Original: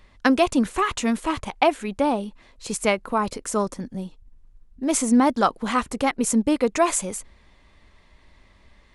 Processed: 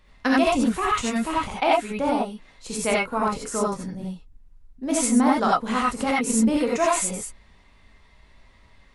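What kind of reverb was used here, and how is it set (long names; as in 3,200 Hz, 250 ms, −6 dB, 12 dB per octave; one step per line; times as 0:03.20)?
reverb whose tail is shaped and stops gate 110 ms rising, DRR −5 dB
level −5.5 dB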